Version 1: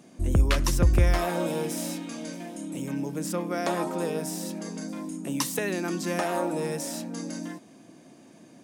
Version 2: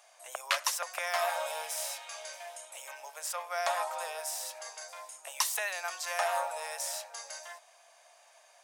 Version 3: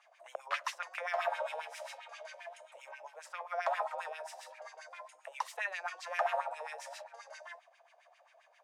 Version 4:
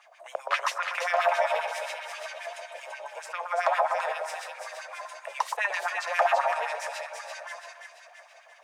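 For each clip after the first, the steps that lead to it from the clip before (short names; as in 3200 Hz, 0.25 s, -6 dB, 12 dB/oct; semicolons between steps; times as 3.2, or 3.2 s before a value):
steep high-pass 630 Hz 48 dB/oct
LFO band-pass sine 7.5 Hz 460–2600 Hz; gain +3 dB
split-band echo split 1500 Hz, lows 0.121 s, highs 0.337 s, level -5 dB; gain +8.5 dB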